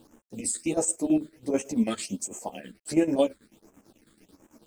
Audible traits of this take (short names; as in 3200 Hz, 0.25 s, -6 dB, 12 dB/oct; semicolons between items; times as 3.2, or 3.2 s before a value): a quantiser's noise floor 10-bit, dither none; phasing stages 8, 1.4 Hz, lowest notch 780–4300 Hz; chopped level 9.1 Hz, depth 65%, duty 60%; a shimmering, thickened sound